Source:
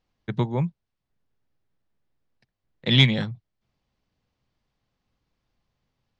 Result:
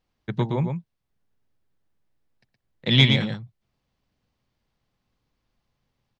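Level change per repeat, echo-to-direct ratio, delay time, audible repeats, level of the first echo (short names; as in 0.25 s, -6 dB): no steady repeat, -5.5 dB, 0.118 s, 1, -5.5 dB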